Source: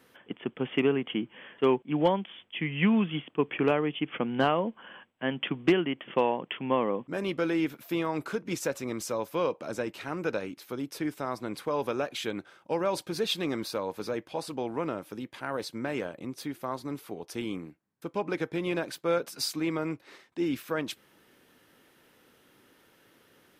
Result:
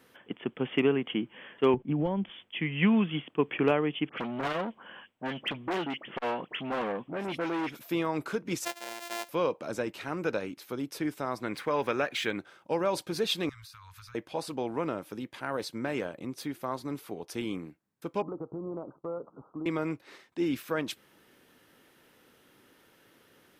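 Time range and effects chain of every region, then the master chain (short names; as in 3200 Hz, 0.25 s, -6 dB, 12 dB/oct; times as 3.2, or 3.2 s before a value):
1.74–2.3 RIAA curve playback + compressor 5:1, threshold -25 dBFS
4.09–7.8 dispersion highs, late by 67 ms, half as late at 2400 Hz + hard clip -22 dBFS + core saturation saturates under 760 Hz
8.65–9.29 sample sorter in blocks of 128 samples + Chebyshev high-pass 760 Hz + bell 1200 Hz -12 dB 0.29 oct
11.43–12.37 median filter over 3 samples + bell 1900 Hz +9 dB 1 oct
13.49–14.15 elliptic band-stop 110–1200 Hz + low shelf 170 Hz +9.5 dB + compressor 12:1, threshold -46 dBFS
18.22–19.66 steep low-pass 1300 Hz 96 dB/oct + compressor 2.5:1, threshold -36 dBFS
whole clip: dry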